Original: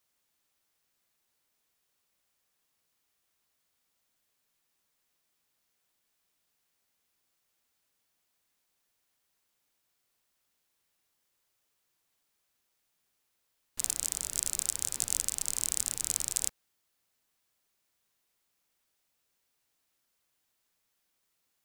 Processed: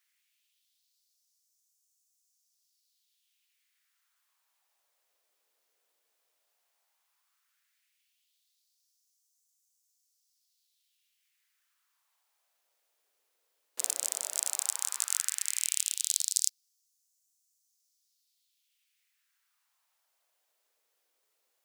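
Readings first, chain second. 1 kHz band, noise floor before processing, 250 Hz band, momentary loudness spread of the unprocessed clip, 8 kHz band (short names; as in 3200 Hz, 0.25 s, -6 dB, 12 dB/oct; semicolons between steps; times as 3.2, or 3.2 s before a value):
+1.5 dB, -79 dBFS, under -10 dB, 3 LU, +1.0 dB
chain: LFO high-pass sine 0.13 Hz 460–6500 Hz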